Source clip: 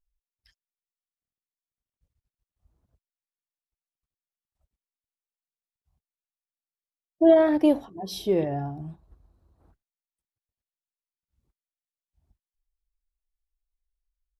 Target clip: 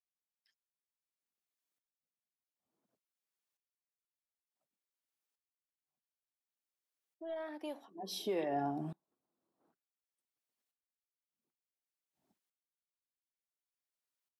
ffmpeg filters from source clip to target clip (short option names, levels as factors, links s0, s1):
-filter_complex "[0:a]highpass=f=210:w=0.5412,highpass=f=210:w=1.3066,acrossover=split=730[s0][s1];[s0]acompressor=threshold=0.0251:ratio=6[s2];[s1]aeval=exprs='0.141*(cos(1*acos(clip(val(0)/0.141,-1,1)))-cos(1*PI/2))+0.00708*(cos(2*acos(clip(val(0)/0.141,-1,1)))-cos(2*PI/2))':c=same[s3];[s2][s3]amix=inputs=2:normalize=0,aeval=exprs='val(0)*pow(10,-26*if(lt(mod(-0.56*n/s,1),2*abs(-0.56)/1000),1-mod(-0.56*n/s,1)/(2*abs(-0.56)/1000),(mod(-0.56*n/s,1)-2*abs(-0.56)/1000)/(1-2*abs(-0.56)/1000))/20)':c=same,volume=1.78"